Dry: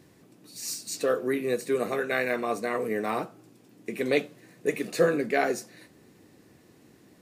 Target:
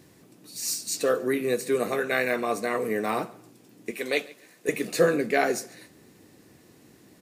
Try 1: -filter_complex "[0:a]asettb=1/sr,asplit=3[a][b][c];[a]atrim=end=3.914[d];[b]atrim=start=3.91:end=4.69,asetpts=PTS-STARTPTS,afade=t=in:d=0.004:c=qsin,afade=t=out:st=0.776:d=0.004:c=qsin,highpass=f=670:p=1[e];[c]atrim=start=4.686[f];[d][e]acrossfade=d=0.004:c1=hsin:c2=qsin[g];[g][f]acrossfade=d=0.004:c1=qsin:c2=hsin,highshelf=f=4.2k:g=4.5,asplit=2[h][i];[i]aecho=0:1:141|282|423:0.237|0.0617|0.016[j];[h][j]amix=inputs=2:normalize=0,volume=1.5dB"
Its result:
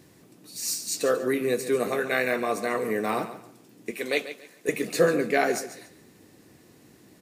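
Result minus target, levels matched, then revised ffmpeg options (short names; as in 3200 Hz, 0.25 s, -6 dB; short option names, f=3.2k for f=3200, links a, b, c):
echo-to-direct +9.5 dB
-filter_complex "[0:a]asettb=1/sr,asplit=3[a][b][c];[a]atrim=end=3.914[d];[b]atrim=start=3.91:end=4.69,asetpts=PTS-STARTPTS,afade=t=in:d=0.004:c=qsin,afade=t=out:st=0.776:d=0.004:c=qsin,highpass=f=670:p=1[e];[c]atrim=start=4.686[f];[d][e]acrossfade=d=0.004:c1=hsin:c2=qsin[g];[g][f]acrossfade=d=0.004:c1=qsin:c2=hsin,highshelf=f=4.2k:g=4.5,asplit=2[h][i];[i]aecho=0:1:141|282:0.0794|0.0207[j];[h][j]amix=inputs=2:normalize=0,volume=1.5dB"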